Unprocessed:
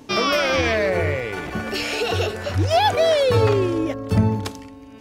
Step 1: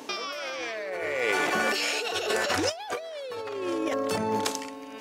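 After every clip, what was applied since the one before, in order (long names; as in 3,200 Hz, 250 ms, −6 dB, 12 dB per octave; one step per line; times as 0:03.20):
high-pass filter 420 Hz 12 dB per octave
compressor whose output falls as the input rises −31 dBFS, ratio −1
dynamic equaliser 7,400 Hz, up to +5 dB, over −49 dBFS, Q 1.2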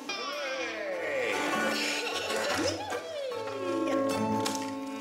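in parallel at +1 dB: downward compressor, threshold −34 dBFS, peak gain reduction 12 dB
on the sum: delay with a high-pass on its return 410 ms, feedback 79%, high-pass 5,000 Hz, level −19 dB
rectangular room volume 2,200 cubic metres, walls furnished, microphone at 2.2 metres
level −7.5 dB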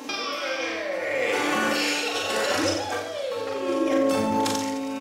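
reverse bouncing-ball delay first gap 40 ms, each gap 1.2×, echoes 5
level +3.5 dB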